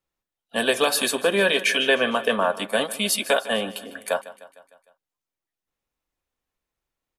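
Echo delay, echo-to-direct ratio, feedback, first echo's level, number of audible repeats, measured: 0.152 s, -15.5 dB, 57%, -17.0 dB, 4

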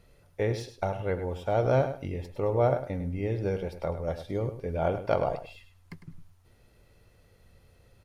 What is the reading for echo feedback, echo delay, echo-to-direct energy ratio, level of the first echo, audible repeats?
17%, 0.103 s, -11.0 dB, -11.0 dB, 2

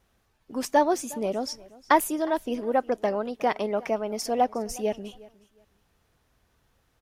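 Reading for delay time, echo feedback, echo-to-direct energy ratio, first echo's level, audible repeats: 0.361 s, 22%, -21.5 dB, -21.5 dB, 2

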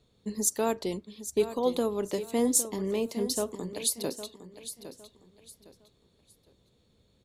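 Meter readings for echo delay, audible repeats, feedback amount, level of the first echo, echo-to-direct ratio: 0.809 s, 3, 29%, -12.0 dB, -11.5 dB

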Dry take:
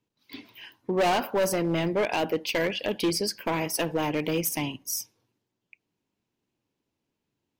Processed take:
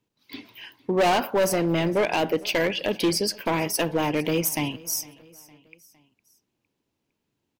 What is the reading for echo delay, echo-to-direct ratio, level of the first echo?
0.458 s, -21.5 dB, -22.5 dB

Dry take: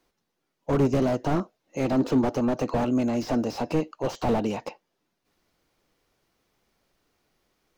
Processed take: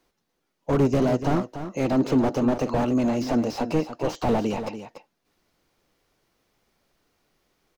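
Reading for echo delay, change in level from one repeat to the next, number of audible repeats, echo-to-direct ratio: 0.289 s, no steady repeat, 1, -10.5 dB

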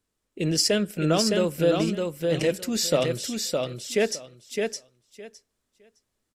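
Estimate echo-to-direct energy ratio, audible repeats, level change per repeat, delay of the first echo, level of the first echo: -4.0 dB, 3, -15.5 dB, 0.612 s, -4.0 dB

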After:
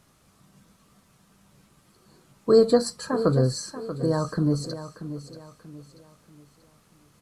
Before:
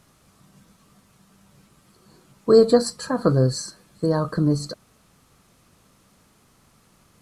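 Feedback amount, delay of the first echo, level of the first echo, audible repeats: 36%, 0.635 s, -12.0 dB, 3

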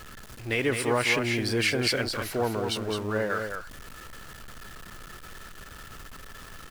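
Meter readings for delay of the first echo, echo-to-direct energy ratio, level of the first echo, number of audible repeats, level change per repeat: 0.211 s, -6.0 dB, -6.0 dB, 1, no steady repeat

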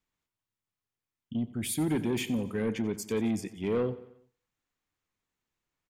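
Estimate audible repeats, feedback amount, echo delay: 4, 51%, 90 ms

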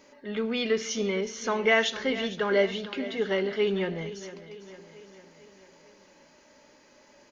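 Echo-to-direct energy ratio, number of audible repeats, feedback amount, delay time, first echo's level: -13.5 dB, 4, 55%, 0.453 s, -15.0 dB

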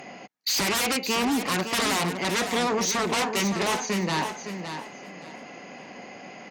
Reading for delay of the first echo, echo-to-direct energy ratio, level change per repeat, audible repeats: 0.563 s, -8.5 dB, -13.0 dB, 3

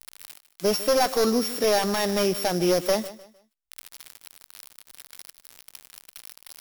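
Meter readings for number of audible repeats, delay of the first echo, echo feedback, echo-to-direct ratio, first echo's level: 2, 0.152 s, 30%, -16.0 dB, -16.5 dB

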